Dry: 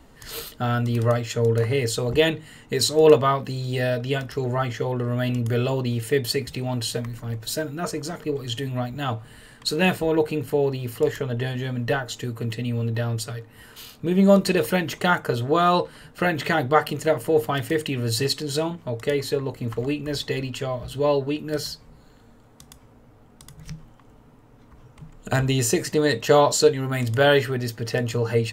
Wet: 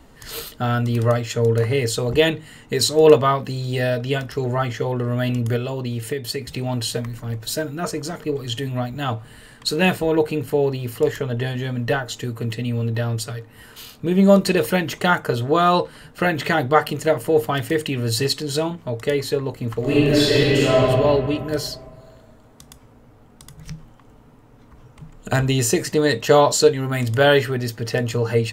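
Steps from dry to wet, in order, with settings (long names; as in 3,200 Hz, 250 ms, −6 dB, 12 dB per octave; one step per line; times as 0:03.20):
0:05.56–0:06.49: downward compressor 6 to 1, threshold −25 dBFS, peak gain reduction 9 dB
0:19.80–0:20.87: thrown reverb, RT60 2.3 s, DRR −9 dB
level +2.5 dB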